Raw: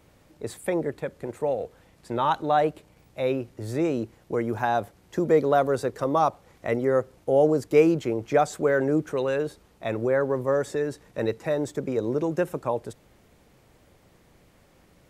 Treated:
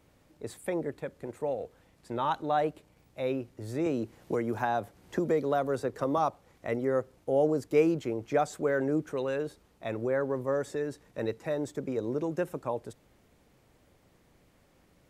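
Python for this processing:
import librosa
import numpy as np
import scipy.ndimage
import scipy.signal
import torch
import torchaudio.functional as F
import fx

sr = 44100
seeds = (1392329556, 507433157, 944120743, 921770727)

y = fx.peak_eq(x, sr, hz=270.0, db=2.5, octaves=0.27)
y = fx.band_squash(y, sr, depth_pct=70, at=(3.86, 6.18))
y = F.gain(torch.from_numpy(y), -6.0).numpy()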